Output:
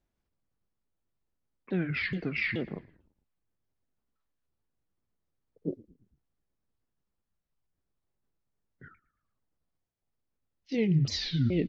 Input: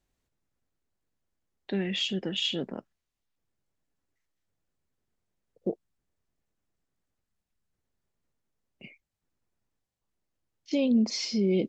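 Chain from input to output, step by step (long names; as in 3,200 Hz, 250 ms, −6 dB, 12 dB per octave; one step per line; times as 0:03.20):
pitch shifter swept by a sawtooth −9 semitones, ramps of 426 ms
echo with shifted repeats 112 ms, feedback 50%, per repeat −56 Hz, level −21.5 dB
one half of a high-frequency compander decoder only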